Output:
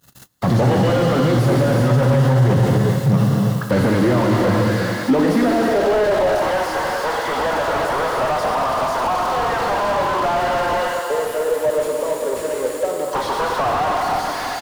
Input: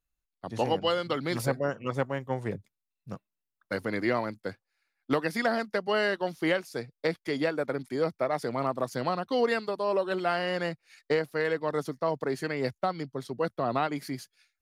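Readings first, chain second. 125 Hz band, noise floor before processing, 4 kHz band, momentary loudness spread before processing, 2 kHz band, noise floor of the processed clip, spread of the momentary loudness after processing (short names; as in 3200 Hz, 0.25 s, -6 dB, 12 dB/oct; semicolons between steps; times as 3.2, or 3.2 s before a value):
+20.0 dB, under -85 dBFS, +9.0 dB, 10 LU, +8.5 dB, -26 dBFS, 6 LU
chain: power-law curve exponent 0.35; spectral gain 10.61–13.08, 630–6700 Hz -20 dB; bell 2400 Hz -14 dB 0.21 oct; on a send: feedback echo 0.429 s, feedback 38%, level -14 dB; on the sum: non-linear reverb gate 0.41 s flat, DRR 0.5 dB; high-pass sweep 130 Hz -> 890 Hz, 4.83–6.61; limiter -14 dBFS, peak gain reduction 13.5 dB; gate -39 dBFS, range -30 dB; slew limiter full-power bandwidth 61 Hz; gain +6.5 dB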